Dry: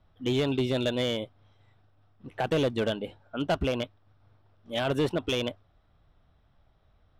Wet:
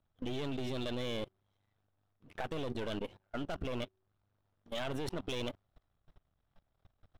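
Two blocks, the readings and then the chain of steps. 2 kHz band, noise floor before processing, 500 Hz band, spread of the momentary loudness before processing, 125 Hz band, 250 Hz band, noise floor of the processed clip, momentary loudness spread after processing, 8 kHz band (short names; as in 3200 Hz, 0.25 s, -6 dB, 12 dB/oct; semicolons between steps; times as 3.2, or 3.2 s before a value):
-9.5 dB, -65 dBFS, -11.5 dB, 9 LU, -10.0 dB, -10.0 dB, -80 dBFS, 6 LU, -8.0 dB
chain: half-wave gain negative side -12 dB; de-hum 188.9 Hz, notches 2; level quantiser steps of 21 dB; gain +5.5 dB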